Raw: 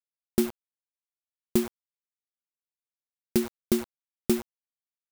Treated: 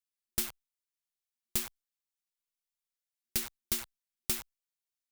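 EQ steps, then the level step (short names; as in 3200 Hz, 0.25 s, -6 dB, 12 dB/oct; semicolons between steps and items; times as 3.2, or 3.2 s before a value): passive tone stack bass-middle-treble 10-0-10; +3.0 dB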